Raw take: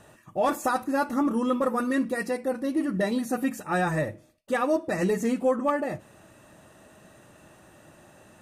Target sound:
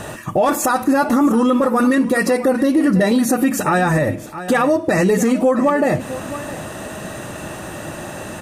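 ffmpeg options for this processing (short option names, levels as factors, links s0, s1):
-filter_complex "[0:a]acompressor=threshold=0.0224:ratio=6,asplit=2[s0][s1];[s1]aecho=0:1:662:0.141[s2];[s0][s2]amix=inputs=2:normalize=0,alimiter=level_in=29.9:limit=0.891:release=50:level=0:latency=1,volume=0.473"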